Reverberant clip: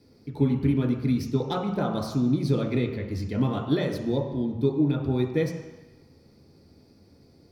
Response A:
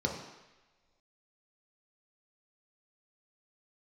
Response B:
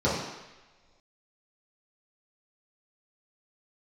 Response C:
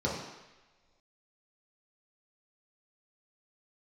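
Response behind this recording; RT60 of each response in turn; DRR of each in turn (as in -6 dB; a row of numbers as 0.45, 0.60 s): A; not exponential, not exponential, not exponential; -0.5, -10.0, -5.5 dB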